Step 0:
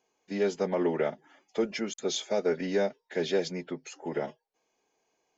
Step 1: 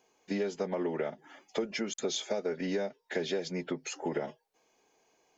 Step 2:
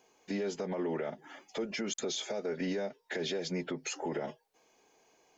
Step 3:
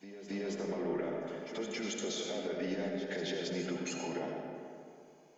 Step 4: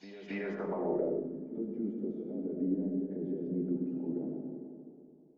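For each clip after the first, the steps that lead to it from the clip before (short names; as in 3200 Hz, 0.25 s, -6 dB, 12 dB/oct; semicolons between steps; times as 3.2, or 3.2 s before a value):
compressor 6:1, threshold -36 dBFS, peak gain reduction 13.5 dB; gain +6 dB
limiter -29.5 dBFS, peak gain reduction 10.5 dB; gain +3 dB
reverse echo 0.273 s -11.5 dB; digital reverb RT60 2.5 s, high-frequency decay 0.5×, pre-delay 40 ms, DRR 1 dB; gain -4 dB
low-pass sweep 4800 Hz -> 290 Hz, 0.04–1.32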